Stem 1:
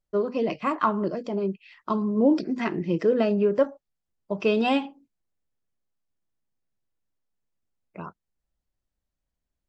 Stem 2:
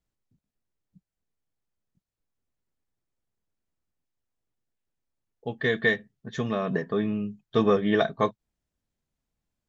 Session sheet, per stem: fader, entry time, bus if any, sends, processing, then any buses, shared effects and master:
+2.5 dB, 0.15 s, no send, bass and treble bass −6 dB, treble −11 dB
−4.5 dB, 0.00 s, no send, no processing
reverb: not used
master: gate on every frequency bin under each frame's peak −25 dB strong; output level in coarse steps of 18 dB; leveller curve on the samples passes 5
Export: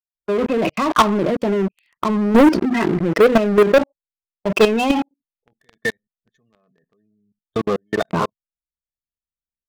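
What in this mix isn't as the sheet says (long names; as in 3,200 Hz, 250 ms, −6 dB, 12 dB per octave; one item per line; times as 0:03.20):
stem 1: missing bass and treble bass −6 dB, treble −11 dB
stem 2 −4.5 dB → −14.0 dB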